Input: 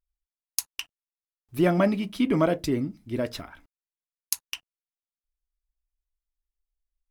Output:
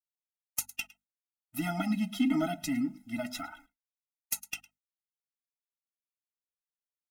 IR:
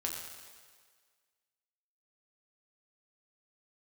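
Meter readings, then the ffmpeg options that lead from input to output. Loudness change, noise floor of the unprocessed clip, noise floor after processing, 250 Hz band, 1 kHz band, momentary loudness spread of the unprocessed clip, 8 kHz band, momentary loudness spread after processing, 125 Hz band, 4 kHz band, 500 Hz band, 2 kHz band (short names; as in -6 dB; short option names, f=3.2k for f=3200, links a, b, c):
-7.0 dB, under -85 dBFS, under -85 dBFS, -4.5 dB, -6.5 dB, 16 LU, -4.0 dB, 13 LU, -10.0 dB, -5.5 dB, -14.5 dB, -4.0 dB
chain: -filter_complex "[0:a]highshelf=f=7.2k:g=7,acrossover=split=340|3000[a][b][c];[b]acompressor=threshold=-32dB:ratio=3[d];[a][d][c]amix=inputs=3:normalize=0,asplit=2[e][f];[f]aecho=0:1:108:0.0668[g];[e][g]amix=inputs=2:normalize=0,flanger=delay=3.1:depth=1.8:regen=28:speed=1.7:shape=triangular,asplit=2[h][i];[i]highpass=f=720:p=1,volume=20dB,asoftclip=type=tanh:threshold=-4dB[j];[h][j]amix=inputs=2:normalize=0,lowpass=f=6.1k:p=1,volume=-6dB,equalizer=f=4.1k:t=o:w=0.7:g=-7,bandreject=f=50:t=h:w=6,bandreject=f=100:t=h:w=6,bandreject=f=150:t=h:w=6,bandreject=f=200:t=h:w=6,bandreject=f=250:t=h:w=6,agate=range=-33dB:threshold=-49dB:ratio=3:detection=peak,afftfilt=real='re*eq(mod(floor(b*sr/1024/310),2),0)':imag='im*eq(mod(floor(b*sr/1024/310),2),0)':win_size=1024:overlap=0.75,volume=-4.5dB"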